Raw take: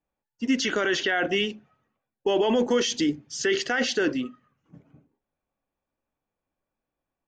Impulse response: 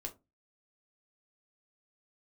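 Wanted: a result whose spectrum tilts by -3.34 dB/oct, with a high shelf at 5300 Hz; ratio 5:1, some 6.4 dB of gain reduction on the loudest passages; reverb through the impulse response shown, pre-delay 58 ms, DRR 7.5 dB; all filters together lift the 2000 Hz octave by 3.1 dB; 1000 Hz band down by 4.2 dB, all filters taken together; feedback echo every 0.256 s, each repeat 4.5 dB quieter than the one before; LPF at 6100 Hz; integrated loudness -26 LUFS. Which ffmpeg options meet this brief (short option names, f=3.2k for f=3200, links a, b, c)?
-filter_complex "[0:a]lowpass=6.1k,equalizer=f=1k:t=o:g=-9,equalizer=f=2k:t=o:g=8,highshelf=f=5.3k:g=-7.5,acompressor=threshold=-26dB:ratio=5,aecho=1:1:256|512|768|1024|1280|1536|1792|2048|2304:0.596|0.357|0.214|0.129|0.0772|0.0463|0.0278|0.0167|0.01,asplit=2[a][b];[1:a]atrim=start_sample=2205,adelay=58[c];[b][c]afir=irnorm=-1:irlink=0,volume=-5.5dB[d];[a][d]amix=inputs=2:normalize=0,volume=2.5dB"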